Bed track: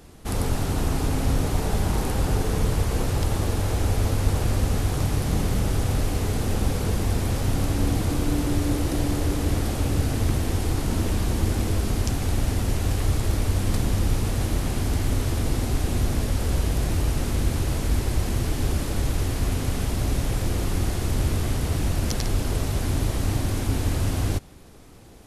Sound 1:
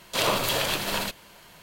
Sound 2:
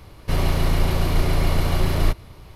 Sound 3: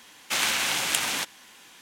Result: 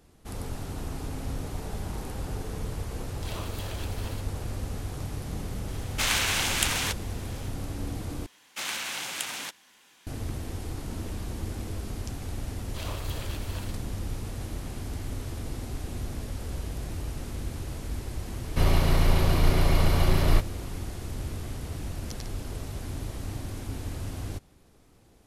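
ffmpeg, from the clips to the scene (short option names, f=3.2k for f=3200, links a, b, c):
-filter_complex "[1:a]asplit=2[a][b];[3:a]asplit=2[c][d];[0:a]volume=-11dB,asplit=2[e][f];[e]atrim=end=8.264[g];[d]atrim=end=1.81,asetpts=PTS-STARTPTS,volume=-8dB[h];[f]atrim=start=10.066[i];[a]atrim=end=1.62,asetpts=PTS-STARTPTS,volume=-17dB,afade=t=in:d=0.004:c=hsin,afade=t=out:st=1.616:d=0.004:c=hsin,adelay=3100[j];[c]atrim=end=1.81,asetpts=PTS-STARTPTS,volume=-1dB,afade=t=in:d=0.004:c=hsin,afade=t=out:st=1.806:d=0.004:c=hsin,adelay=5680[k];[b]atrim=end=1.62,asetpts=PTS-STARTPTS,volume=-16.5dB,afade=t=in:d=0.004:c=hsin,afade=t=out:st=1.616:d=0.004:c=hsin,adelay=12610[l];[2:a]atrim=end=2.55,asetpts=PTS-STARTPTS,volume=-2dB,afade=t=in:d=0.004:c=hsin,afade=t=out:st=2.546:d=0.004:c=hsin,adelay=806148S[m];[g][h]acrossfade=d=0.004:c1=hsin:c2=hsin[n];[n][i]acrossfade=d=0.004:c1=hsin:c2=hsin[o];[o][j][k][l][m]amix=inputs=5:normalize=0"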